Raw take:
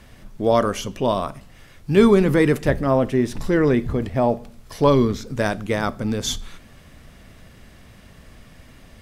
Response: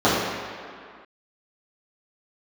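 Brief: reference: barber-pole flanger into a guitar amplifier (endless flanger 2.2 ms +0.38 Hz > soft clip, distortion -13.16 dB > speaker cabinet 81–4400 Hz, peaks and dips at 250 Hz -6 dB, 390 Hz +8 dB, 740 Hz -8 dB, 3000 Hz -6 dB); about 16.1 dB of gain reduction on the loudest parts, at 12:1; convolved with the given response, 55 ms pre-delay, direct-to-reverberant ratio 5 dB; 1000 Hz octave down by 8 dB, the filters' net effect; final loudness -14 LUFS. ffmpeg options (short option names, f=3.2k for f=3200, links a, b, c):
-filter_complex "[0:a]equalizer=f=1k:t=o:g=-7,acompressor=threshold=-26dB:ratio=12,asplit=2[a][b];[1:a]atrim=start_sample=2205,adelay=55[c];[b][c]afir=irnorm=-1:irlink=0,volume=-28.5dB[d];[a][d]amix=inputs=2:normalize=0,asplit=2[e][f];[f]adelay=2.2,afreqshift=0.38[g];[e][g]amix=inputs=2:normalize=1,asoftclip=threshold=-28dB,highpass=81,equalizer=f=250:t=q:w=4:g=-6,equalizer=f=390:t=q:w=4:g=8,equalizer=f=740:t=q:w=4:g=-8,equalizer=f=3k:t=q:w=4:g=-6,lowpass=f=4.4k:w=0.5412,lowpass=f=4.4k:w=1.3066,volume=20.5dB"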